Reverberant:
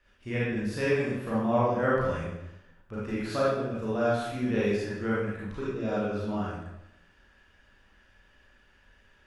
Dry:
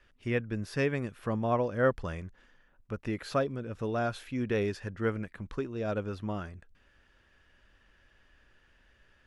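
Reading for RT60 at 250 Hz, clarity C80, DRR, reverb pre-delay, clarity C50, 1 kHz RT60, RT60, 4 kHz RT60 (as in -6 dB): 0.90 s, 2.0 dB, -8.0 dB, 31 ms, -2.5 dB, 0.85 s, 0.90 s, 0.75 s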